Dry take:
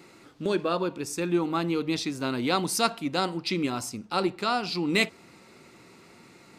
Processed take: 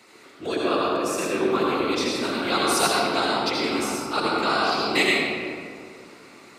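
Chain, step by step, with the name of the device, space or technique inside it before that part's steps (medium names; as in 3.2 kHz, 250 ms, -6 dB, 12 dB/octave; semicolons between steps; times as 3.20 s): whispering ghost (whisper effect; high-pass 590 Hz 6 dB/octave; reverberation RT60 2.2 s, pre-delay 66 ms, DRR -4 dB); trim +2 dB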